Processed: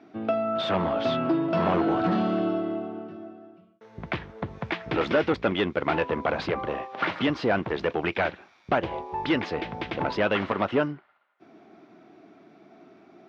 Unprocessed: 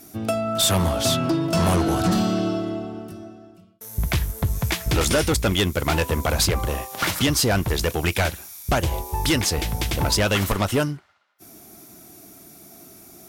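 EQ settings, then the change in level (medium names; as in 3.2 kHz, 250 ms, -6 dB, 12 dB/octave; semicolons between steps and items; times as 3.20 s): band-pass 240–3000 Hz; distance through air 250 m; 0.0 dB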